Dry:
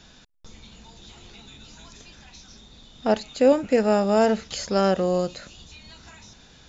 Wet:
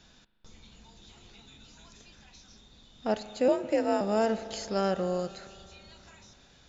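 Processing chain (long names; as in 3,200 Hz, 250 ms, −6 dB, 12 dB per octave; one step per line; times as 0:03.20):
0:03.48–0:04.01: frequency shifter +50 Hz
spring reverb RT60 3 s, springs 38 ms, chirp 25 ms, DRR 13 dB
level −7.5 dB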